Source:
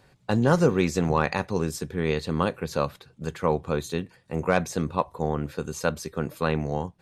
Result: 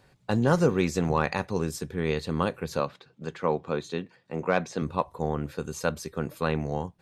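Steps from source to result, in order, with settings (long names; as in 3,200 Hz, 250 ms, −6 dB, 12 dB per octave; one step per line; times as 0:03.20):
0:02.80–0:04.82: band-pass filter 160–5,300 Hz
level −2 dB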